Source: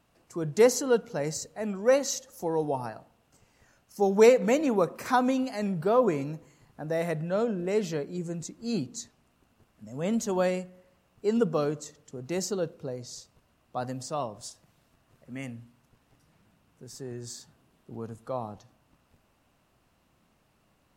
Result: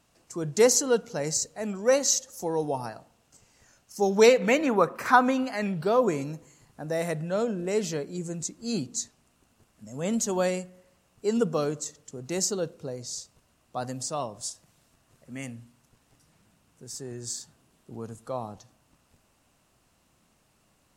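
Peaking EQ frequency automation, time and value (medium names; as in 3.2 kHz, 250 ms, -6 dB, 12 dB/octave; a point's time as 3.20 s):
peaking EQ +9 dB 1.5 oct
4.00 s 6.9 kHz
4.76 s 1.4 kHz
5.52 s 1.4 kHz
6.02 s 7.9 kHz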